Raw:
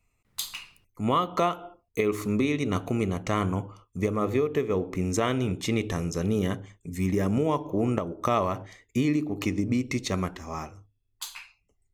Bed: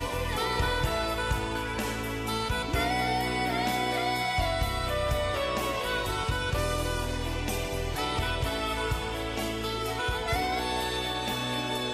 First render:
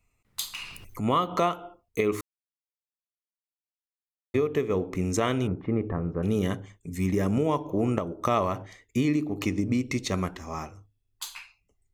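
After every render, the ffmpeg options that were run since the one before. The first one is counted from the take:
ffmpeg -i in.wav -filter_complex "[0:a]asplit=3[link_01][link_02][link_03];[link_01]afade=type=out:start_time=0.57:duration=0.02[link_04];[link_02]acompressor=mode=upward:threshold=-27dB:ratio=2.5:attack=3.2:release=140:knee=2.83:detection=peak,afade=type=in:start_time=0.57:duration=0.02,afade=type=out:start_time=1.48:duration=0.02[link_05];[link_03]afade=type=in:start_time=1.48:duration=0.02[link_06];[link_04][link_05][link_06]amix=inputs=3:normalize=0,asettb=1/sr,asplit=3[link_07][link_08][link_09];[link_07]atrim=end=5.474[link_10];[link_08]atrim=start=5.47:end=6.23,asetpts=PTS-STARTPTS,afade=type=in:duration=0.004:curve=qsin,afade=type=out:start_time=0.756:duration=0.004:curve=qsin,lowpass=frequency=1500:width=0.5412,lowpass=frequency=1500:width=1.3066[link_11];[link_09]atrim=start=6.226[link_12];[link_10][link_11]acrossfade=duration=0.004:curve1=hsin:curve2=qsin[link_13];[link_13][link_12]acrossfade=duration=0.004:curve1=qsin:curve2=hsin,asplit=3[link_14][link_15][link_16];[link_14]atrim=end=2.21,asetpts=PTS-STARTPTS,afade=type=out:start_time=2.206:duration=0.004:curve=hsin[link_17];[link_15]atrim=start=2.21:end=4.34,asetpts=PTS-STARTPTS,volume=0[link_18];[link_16]atrim=start=4.34,asetpts=PTS-STARTPTS,afade=type=in:duration=0.004:curve=hsin[link_19];[link_17][link_18][link_19]concat=n=3:v=0:a=1" out.wav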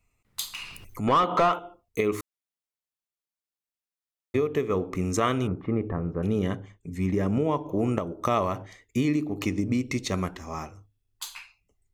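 ffmpeg -i in.wav -filter_complex "[0:a]asettb=1/sr,asplit=3[link_01][link_02][link_03];[link_01]atrim=end=1.074[link_04];[link_02]atrim=start=1.07:end=1.59,asetpts=PTS-STARTPTS,afade=type=in:duration=0.004:curve=qsin,afade=type=out:start_time=0.516:duration=0.004:curve=qsin,asplit=2[link_05][link_06];[link_06]highpass=frequency=720:poles=1,volume=18dB,asoftclip=type=tanh:threshold=-12dB[link_07];[link_05][link_07]amix=inputs=2:normalize=0,lowpass=frequency=1700:poles=1,volume=-6dB[link_08];[link_03]atrim=start=1.586[link_09];[link_04][link_08]acrossfade=duration=0.004:curve1=hsin:curve2=qsin[link_10];[link_10][link_09]acrossfade=duration=0.004:curve1=qsin:curve2=hsin,asettb=1/sr,asplit=3[link_11][link_12][link_13];[link_11]atrim=end=4.664[link_14];[link_12]atrim=start=4.66:end=5.75,asetpts=PTS-STARTPTS,afade=type=in:duration=0.004:curve=qsin,afade=type=out:start_time=1.086:duration=0.004:curve=qsin,equalizer=frequency=1200:width=5.4:gain=8[link_15];[link_13]atrim=start=5.746[link_16];[link_14][link_15]acrossfade=duration=0.004:curve1=hsin:curve2=qsin[link_17];[link_17][link_16]acrossfade=duration=0.004:curve1=qsin:curve2=hsin,asettb=1/sr,asplit=3[link_18][link_19][link_20];[link_18]atrim=end=6.274[link_21];[link_19]atrim=start=6.27:end=7.69,asetpts=PTS-STARTPTS,afade=type=in:duration=0.004:curve=qsin,afade=type=out:start_time=1.416:duration=0.004:curve=qsin,lowpass=frequency=3000:poles=1[link_22];[link_20]atrim=start=7.686[link_23];[link_21][link_22]acrossfade=duration=0.004:curve1=hsin:curve2=qsin[link_24];[link_24][link_23]acrossfade=duration=0.004:curve1=qsin:curve2=hsin" out.wav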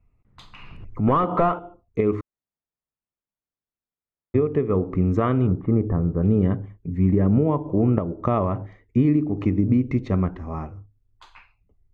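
ffmpeg -i in.wav -af "lowpass=1600,lowshelf=frequency=310:gain=10.5" out.wav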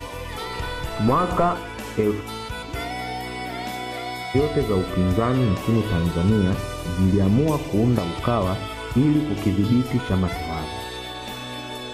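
ffmpeg -i in.wav -i bed.wav -filter_complex "[1:a]volume=-2dB[link_01];[0:a][link_01]amix=inputs=2:normalize=0" out.wav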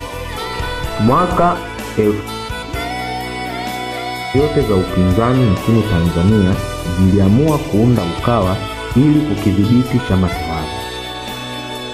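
ffmpeg -i in.wav -af "volume=7.5dB,alimiter=limit=-2dB:level=0:latency=1" out.wav

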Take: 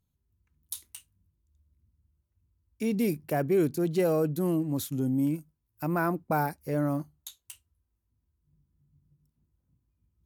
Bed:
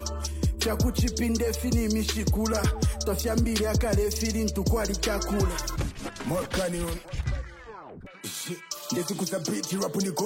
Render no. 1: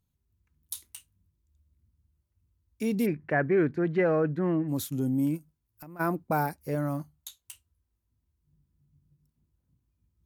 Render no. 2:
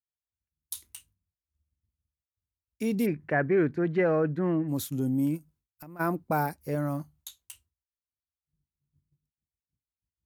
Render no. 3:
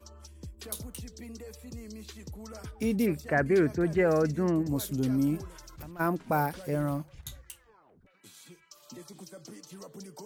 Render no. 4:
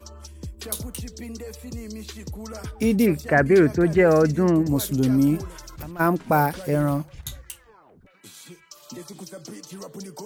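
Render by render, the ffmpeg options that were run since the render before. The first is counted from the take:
ffmpeg -i in.wav -filter_complex "[0:a]asplit=3[link_01][link_02][link_03];[link_01]afade=type=out:start_time=3.05:duration=0.02[link_04];[link_02]lowpass=frequency=1800:width_type=q:width=4.1,afade=type=in:start_time=3.05:duration=0.02,afade=type=out:start_time=4.67:duration=0.02[link_05];[link_03]afade=type=in:start_time=4.67:duration=0.02[link_06];[link_04][link_05][link_06]amix=inputs=3:normalize=0,asplit=3[link_07][link_08][link_09];[link_07]afade=type=out:start_time=5.37:duration=0.02[link_10];[link_08]acompressor=threshold=-42dB:ratio=12:attack=3.2:release=140:knee=1:detection=peak,afade=type=in:start_time=5.37:duration=0.02,afade=type=out:start_time=5.99:duration=0.02[link_11];[link_09]afade=type=in:start_time=5.99:duration=0.02[link_12];[link_10][link_11][link_12]amix=inputs=3:normalize=0,asettb=1/sr,asplit=3[link_13][link_14][link_15];[link_13]atrim=end=6.754[link_16];[link_14]atrim=start=6.75:end=7.42,asetpts=PTS-STARTPTS,afade=type=in:duration=0.004:curve=qsin,afade=type=out:start_time=0.666:duration=0.004:curve=qsin,equalizer=frequency=380:width_type=o:width=0.86:gain=-7[link_17];[link_15]atrim=start=7.416[link_18];[link_16][link_17]acrossfade=duration=0.004:curve1=hsin:curve2=qsin[link_19];[link_19][link_18]acrossfade=duration=0.004:curve1=qsin:curve2=hsin" out.wav
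ffmpeg -i in.wav -af "agate=range=-33dB:threshold=-57dB:ratio=3:detection=peak" out.wav
ffmpeg -i in.wav -i bed.wav -filter_complex "[1:a]volume=-18dB[link_01];[0:a][link_01]amix=inputs=2:normalize=0" out.wav
ffmpeg -i in.wav -af "volume=8dB" out.wav

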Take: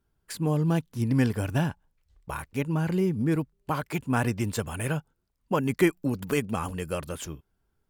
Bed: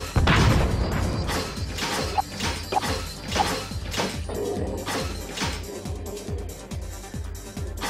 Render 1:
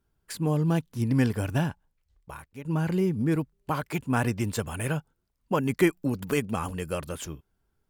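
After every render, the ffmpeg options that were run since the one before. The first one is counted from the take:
ffmpeg -i in.wav -filter_complex "[0:a]asplit=2[link_01][link_02];[link_01]atrim=end=2.65,asetpts=PTS-STARTPTS,afade=type=out:start_time=1.54:duration=1.11:silence=0.199526[link_03];[link_02]atrim=start=2.65,asetpts=PTS-STARTPTS,afade=type=in:duration=0.004:curve=hsin:silence=0.199526[link_04];[link_03][link_04]concat=n=2:v=0:a=1" out.wav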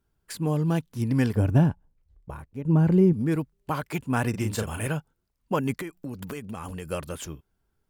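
ffmpeg -i in.wav -filter_complex "[0:a]asettb=1/sr,asplit=3[link_01][link_02][link_03];[link_01]atrim=end=1.354[link_04];[link_02]atrim=start=1.35:end=3.13,asetpts=PTS-STARTPTS,afade=type=in:duration=0.004:curve=qsin,afade=type=out:start_time=1.776:duration=0.004:curve=qsin,tiltshelf=frequency=970:gain=8[link_05];[link_03]atrim=start=3.126[link_06];[link_04][link_05]acrossfade=duration=0.004:curve1=hsin:curve2=qsin[link_07];[link_07][link_06]acrossfade=duration=0.004:curve1=qsin:curve2=hsin,asettb=1/sr,asplit=3[link_08][link_09][link_10];[link_08]atrim=end=4.304[link_11];[link_09]atrim=start=4.3:end=4.87,asetpts=PTS-STARTPTS,afade=type=in:duration=0.004:curve=qsin,afade=type=out:start_time=0.566:duration=0.004:curve=qsin,asplit=2[link_12][link_13];[link_13]adelay=37,volume=-5dB[link_14];[link_12][link_14]amix=inputs=2:normalize=0,atrim=end_sample=25137[link_15];[link_10]atrim=start=4.866[link_16];[link_11][link_15]acrossfade=duration=0.004:curve1=hsin:curve2=qsin[link_17];[link_17][link_16]acrossfade=duration=0.004:curve1=qsin:curve2=hsin,asettb=1/sr,asplit=3[link_18][link_19][link_20];[link_18]atrim=end=5.754[link_21];[link_19]atrim=start=5.75:end=6.89,asetpts=PTS-STARTPTS,afade=type=in:duration=0.004:curve=qsin,afade=type=out:start_time=1.136:duration=0.004:curve=qsin,acompressor=threshold=-31dB:ratio=8:attack=3.2:release=140:knee=1:detection=peak[link_22];[link_20]atrim=start=6.886[link_23];[link_21][link_22]acrossfade=duration=0.004:curve1=hsin:curve2=qsin[link_24];[link_24][link_23]acrossfade=duration=0.004:curve1=qsin:curve2=hsin" out.wav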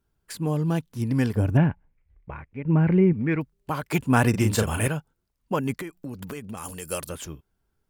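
ffmpeg -i in.wav -filter_complex "[0:a]asettb=1/sr,asplit=3[link_01][link_02][link_03];[link_01]atrim=end=1.574[link_04];[link_02]atrim=start=1.57:end=3.41,asetpts=PTS-STARTPTS,afade=type=in:duration=0.004:curve=qsin,afade=type=out:start_time=1.836:duration=0.004:curve=qsin,lowpass=frequency=2200:width_type=q:width=4.2[link_05];[link_03]atrim=start=3.406[link_06];[link_04][link_05]acrossfade=duration=0.004:curve1=hsin:curve2=qsin[link_07];[link_07][link_06]acrossfade=duration=0.004:curve1=qsin:curve2=hsin,asettb=1/sr,asplit=3[link_08][link_09][link_10];[link_08]atrim=end=6.574[link_11];[link_09]atrim=start=6.57:end=7.1,asetpts=PTS-STARTPTS,afade=type=in:duration=0.004:curve=qsin,afade=type=out:start_time=0.526:duration=0.004:curve=qsin,bass=frequency=250:gain=-5,treble=frequency=4000:gain=13[link_12];[link_10]atrim=start=7.096[link_13];[link_11][link_12]acrossfade=duration=0.004:curve1=hsin:curve2=qsin[link_14];[link_14][link_13]acrossfade=duration=0.004:curve1=qsin:curve2=hsin,asplit=3[link_15][link_16][link_17];[link_15]atrim=end=3.912[link_18];[link_16]atrim=start=3.908:end=4.882,asetpts=PTS-STARTPTS,volume=6dB[link_19];[link_17]atrim=start=4.878[link_20];[link_18][link_19]acrossfade=duration=0.004:curve1=hsin:curve2=hsin[link_21];[link_21][link_20]acrossfade=duration=0.004:curve1=hsin:curve2=hsin" out.wav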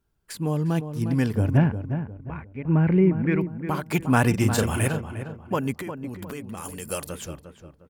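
ffmpeg -i in.wav -filter_complex "[0:a]asplit=2[link_01][link_02];[link_02]adelay=355,lowpass=frequency=1700:poles=1,volume=-9dB,asplit=2[link_03][link_04];[link_04]adelay=355,lowpass=frequency=1700:poles=1,volume=0.36,asplit=2[link_05][link_06];[link_06]adelay=355,lowpass=frequency=1700:poles=1,volume=0.36,asplit=2[link_07][link_08];[link_08]adelay=355,lowpass=frequency=1700:poles=1,volume=0.36[link_09];[link_01][link_03][link_05][link_07][link_09]amix=inputs=5:normalize=0" out.wav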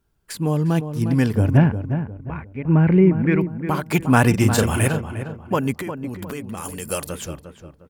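ffmpeg -i in.wav -af "volume=4.5dB" out.wav

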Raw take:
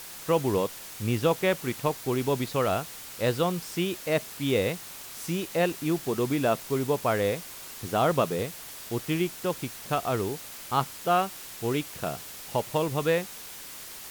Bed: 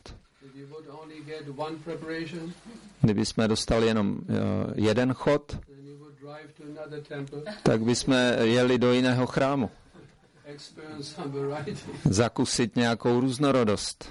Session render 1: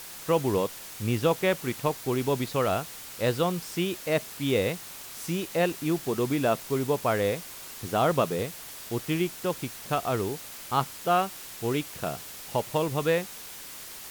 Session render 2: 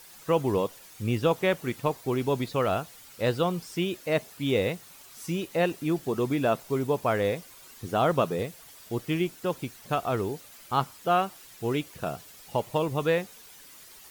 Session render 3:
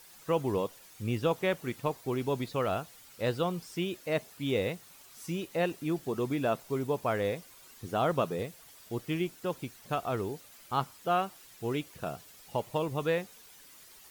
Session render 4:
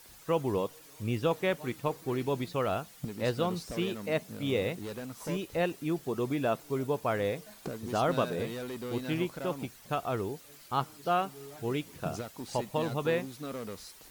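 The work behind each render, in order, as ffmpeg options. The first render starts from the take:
ffmpeg -i in.wav -af anull out.wav
ffmpeg -i in.wav -af "afftdn=noise_reduction=10:noise_floor=-43" out.wav
ffmpeg -i in.wav -af "volume=-4.5dB" out.wav
ffmpeg -i in.wav -i bed.wav -filter_complex "[1:a]volume=-16.5dB[link_01];[0:a][link_01]amix=inputs=2:normalize=0" out.wav

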